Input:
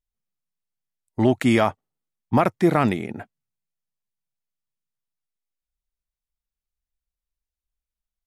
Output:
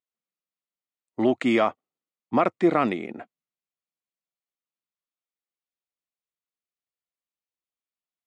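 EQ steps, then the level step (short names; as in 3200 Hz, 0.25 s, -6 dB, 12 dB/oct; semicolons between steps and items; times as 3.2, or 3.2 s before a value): speaker cabinet 380–7400 Hz, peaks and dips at 420 Hz -5 dB, 610 Hz -4 dB, 870 Hz -9 dB, 1600 Hz -7 dB, 5600 Hz -7 dB; high shelf 2200 Hz -11 dB; +5.0 dB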